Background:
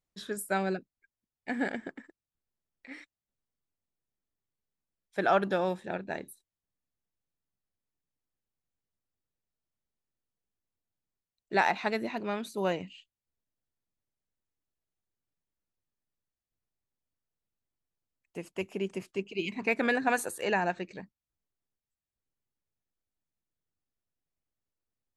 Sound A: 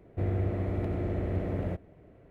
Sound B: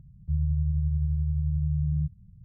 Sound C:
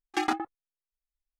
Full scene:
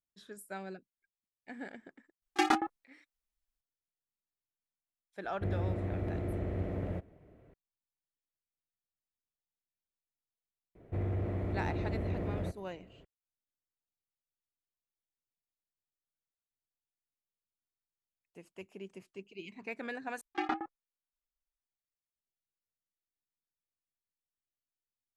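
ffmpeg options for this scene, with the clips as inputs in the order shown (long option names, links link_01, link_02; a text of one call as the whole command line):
ffmpeg -i bed.wav -i cue0.wav -i cue1.wav -i cue2.wav -filter_complex "[3:a]asplit=2[link_01][link_02];[1:a]asplit=2[link_03][link_04];[0:a]volume=-13dB[link_05];[link_04]asoftclip=type=tanh:threshold=-24.5dB[link_06];[link_02]lowpass=2900[link_07];[link_05]asplit=2[link_08][link_09];[link_08]atrim=end=20.214[link_10];[link_07]atrim=end=1.39,asetpts=PTS-STARTPTS,volume=-6dB[link_11];[link_09]atrim=start=21.596[link_12];[link_01]atrim=end=1.39,asetpts=PTS-STARTPTS,afade=type=in:duration=0.004:curve=hsin,afade=type=out:start_time=1.386:duration=0.004:curve=hsin,adelay=2220[link_13];[link_03]atrim=end=2.3,asetpts=PTS-STARTPTS,volume=-4.5dB,afade=type=in:duration=0.004:curve=hsin,afade=type=out:start_time=2.296:duration=0.004:curve=hsin,adelay=5240[link_14];[link_06]atrim=end=2.3,asetpts=PTS-STARTPTS,volume=-2.5dB,afade=type=in:duration=0.004:curve=hsin,afade=type=out:start_time=2.296:duration=0.004:curve=hsin,adelay=10750[link_15];[link_10][link_11]acrossfade=duration=0.004:curve1=hsin:curve2=hsin[link_16];[link_16][link_12]acrossfade=duration=0.004:curve1=hsin:curve2=hsin[link_17];[link_17][link_13][link_14][link_15]amix=inputs=4:normalize=0" out.wav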